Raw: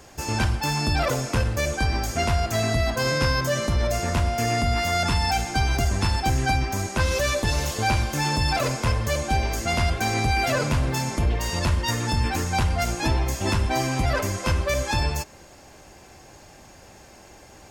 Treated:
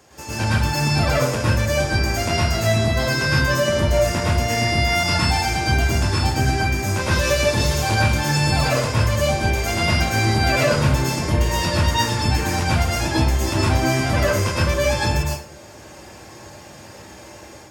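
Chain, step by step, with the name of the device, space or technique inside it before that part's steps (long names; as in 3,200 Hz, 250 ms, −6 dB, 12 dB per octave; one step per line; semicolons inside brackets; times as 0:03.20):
far laptop microphone (convolution reverb RT60 0.40 s, pre-delay 101 ms, DRR −6 dB; high-pass filter 100 Hz 12 dB per octave; automatic gain control gain up to 5.5 dB)
level −4.5 dB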